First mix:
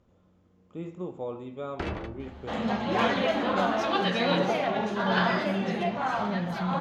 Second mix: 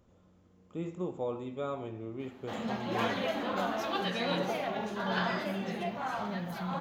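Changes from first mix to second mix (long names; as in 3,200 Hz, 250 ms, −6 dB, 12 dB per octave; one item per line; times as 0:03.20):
first sound: muted
second sound −7.0 dB
master: remove high-frequency loss of the air 62 metres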